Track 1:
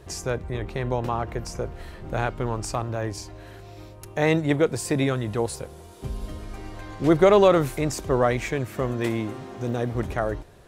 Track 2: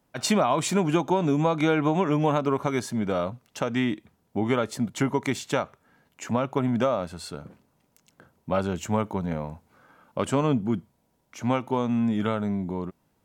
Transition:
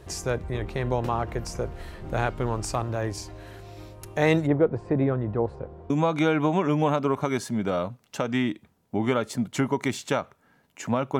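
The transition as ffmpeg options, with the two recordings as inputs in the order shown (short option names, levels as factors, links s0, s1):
-filter_complex "[0:a]asplit=3[s0][s1][s2];[s0]afade=t=out:st=4.46:d=0.02[s3];[s1]lowpass=1100,afade=t=in:st=4.46:d=0.02,afade=t=out:st=5.9:d=0.02[s4];[s2]afade=t=in:st=5.9:d=0.02[s5];[s3][s4][s5]amix=inputs=3:normalize=0,apad=whole_dur=11.19,atrim=end=11.19,atrim=end=5.902[s6];[1:a]atrim=start=1.318:end=6.61[s7];[s6][s7]acrossfade=d=0.004:c1=hsin:c2=hsin"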